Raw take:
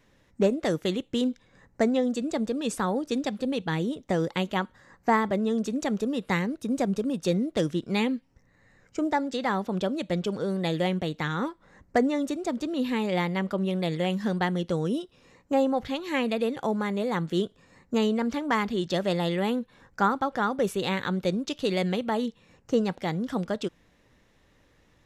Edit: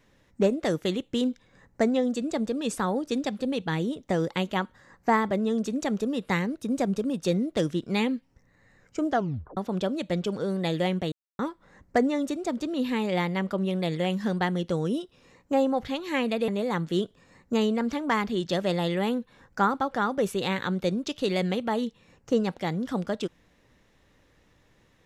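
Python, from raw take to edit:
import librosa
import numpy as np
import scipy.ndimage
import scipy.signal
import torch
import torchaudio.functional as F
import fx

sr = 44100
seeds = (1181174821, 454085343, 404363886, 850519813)

y = fx.edit(x, sr, fx.tape_stop(start_s=9.08, length_s=0.49),
    fx.silence(start_s=11.12, length_s=0.27),
    fx.cut(start_s=16.48, length_s=0.41), tone=tone)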